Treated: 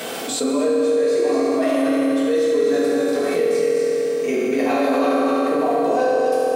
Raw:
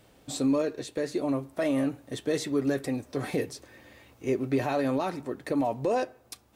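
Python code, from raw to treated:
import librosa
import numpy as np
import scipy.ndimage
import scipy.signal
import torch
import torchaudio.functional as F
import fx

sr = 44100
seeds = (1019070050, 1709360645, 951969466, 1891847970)

y = scipy.signal.sosfilt(scipy.signal.butter(4, 210.0, 'highpass', fs=sr, output='sos'), x)
y = fx.low_shelf(y, sr, hz=290.0, db=-8.5)
y = fx.level_steps(y, sr, step_db=16)
y = y + 10.0 ** (-4.5 / 20.0) * np.pad(y, (int(242 * sr / 1000.0), 0))[:len(y)]
y = fx.rev_fdn(y, sr, rt60_s=2.5, lf_ratio=1.0, hf_ratio=0.8, size_ms=13.0, drr_db=-10.0)
y = fx.env_flatten(y, sr, amount_pct=70)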